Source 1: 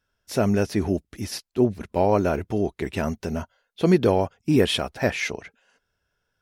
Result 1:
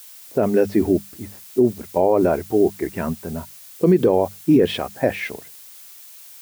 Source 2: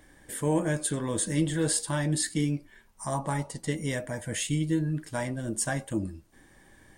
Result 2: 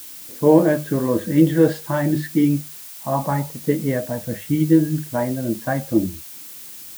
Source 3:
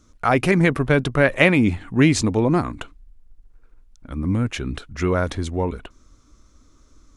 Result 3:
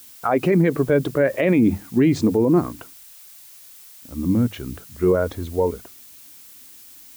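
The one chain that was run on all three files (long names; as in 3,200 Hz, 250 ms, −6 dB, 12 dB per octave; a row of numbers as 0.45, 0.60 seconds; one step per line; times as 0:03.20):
low-pass that shuts in the quiet parts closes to 430 Hz, open at −18.5 dBFS
low-pass filter 1,100 Hz 6 dB per octave
mains-hum notches 50/100/150/200 Hz
noise reduction from a noise print of the clip's start 7 dB
high-pass filter 120 Hz 12 dB per octave
dynamic equaliser 470 Hz, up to +5 dB, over −33 dBFS, Q 1
background noise blue −49 dBFS
boost into a limiter +12 dB
loudness normalisation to −20 LKFS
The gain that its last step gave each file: −5.5, −1.0, −8.0 decibels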